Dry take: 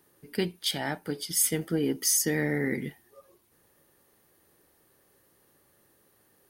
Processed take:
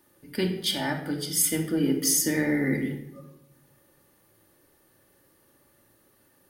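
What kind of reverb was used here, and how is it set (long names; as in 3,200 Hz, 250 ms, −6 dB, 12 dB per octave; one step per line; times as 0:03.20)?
rectangular room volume 2,500 cubic metres, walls furnished, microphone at 2.5 metres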